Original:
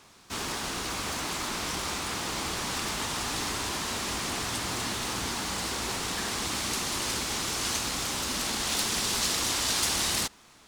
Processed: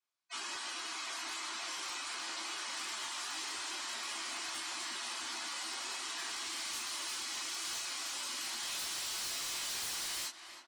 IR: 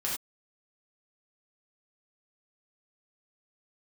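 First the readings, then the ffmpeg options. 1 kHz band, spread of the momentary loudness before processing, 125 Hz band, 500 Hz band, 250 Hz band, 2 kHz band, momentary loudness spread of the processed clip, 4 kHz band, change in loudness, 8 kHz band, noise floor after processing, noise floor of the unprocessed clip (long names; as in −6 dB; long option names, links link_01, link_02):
−10.0 dB, 6 LU, below −25 dB, −16.5 dB, −19.5 dB, −7.5 dB, 3 LU, −7.5 dB, −8.5 dB, −9.0 dB, −52 dBFS, −56 dBFS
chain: -filter_complex "[0:a]highpass=frequency=1100:poles=1[link_01];[1:a]atrim=start_sample=2205,atrim=end_sample=3528,asetrate=74970,aresample=44100[link_02];[link_01][link_02]afir=irnorm=-1:irlink=0,afftdn=noise_reduction=34:noise_floor=-42,asplit=2[link_03][link_04];[link_04]asoftclip=type=hard:threshold=-30dB,volume=-8dB[link_05];[link_03][link_05]amix=inputs=2:normalize=0,asplit=2[link_06][link_07];[link_07]adelay=320,lowpass=frequency=2200:poles=1,volume=-14dB,asplit=2[link_08][link_09];[link_09]adelay=320,lowpass=frequency=2200:poles=1,volume=0.45,asplit=2[link_10][link_11];[link_11]adelay=320,lowpass=frequency=2200:poles=1,volume=0.45,asplit=2[link_12][link_13];[link_13]adelay=320,lowpass=frequency=2200:poles=1,volume=0.45[link_14];[link_06][link_08][link_10][link_12][link_14]amix=inputs=5:normalize=0,aeval=exprs='0.0596*(abs(mod(val(0)/0.0596+3,4)-2)-1)':channel_layout=same,acompressor=threshold=-36dB:ratio=3,volume=-3dB"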